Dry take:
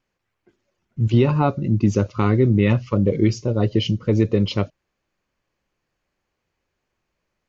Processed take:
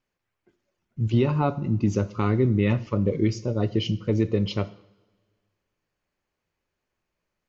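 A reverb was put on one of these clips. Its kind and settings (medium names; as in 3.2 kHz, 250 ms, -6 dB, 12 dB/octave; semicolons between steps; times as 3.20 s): two-slope reverb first 0.71 s, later 1.9 s, DRR 13.5 dB; trim -5 dB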